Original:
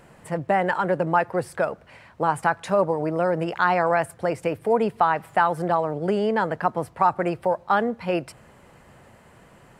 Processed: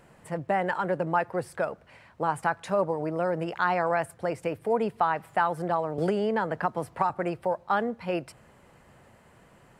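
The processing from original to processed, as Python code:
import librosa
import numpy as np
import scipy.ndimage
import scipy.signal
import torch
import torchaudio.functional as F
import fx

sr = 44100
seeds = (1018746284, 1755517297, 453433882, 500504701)

y = fx.band_squash(x, sr, depth_pct=100, at=(5.98, 7.1))
y = F.gain(torch.from_numpy(y), -5.0).numpy()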